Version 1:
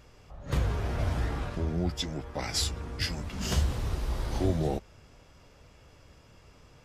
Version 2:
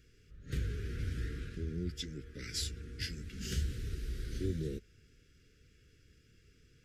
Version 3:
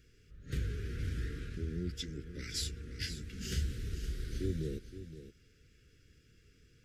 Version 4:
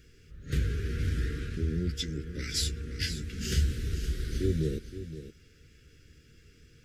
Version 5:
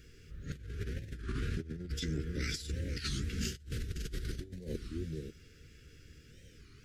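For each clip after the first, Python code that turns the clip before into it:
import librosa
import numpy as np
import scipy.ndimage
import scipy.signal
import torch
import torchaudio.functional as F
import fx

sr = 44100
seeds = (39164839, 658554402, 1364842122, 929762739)

y1 = scipy.signal.sosfilt(scipy.signal.ellip(3, 1.0, 70, [440.0, 1500.0], 'bandstop', fs=sr, output='sos'), x)
y1 = y1 * 10.0 ** (-7.5 / 20.0)
y2 = y1 + 10.0 ** (-12.0 / 20.0) * np.pad(y1, (int(519 * sr / 1000.0), 0))[:len(y1)]
y3 = fx.doubler(y2, sr, ms=13.0, db=-11.5)
y3 = y3 * 10.0 ** (6.5 / 20.0)
y4 = fx.over_compress(y3, sr, threshold_db=-34.0, ratio=-0.5)
y4 = fx.record_warp(y4, sr, rpm=33.33, depth_cents=250.0)
y4 = y4 * 10.0 ** (-3.0 / 20.0)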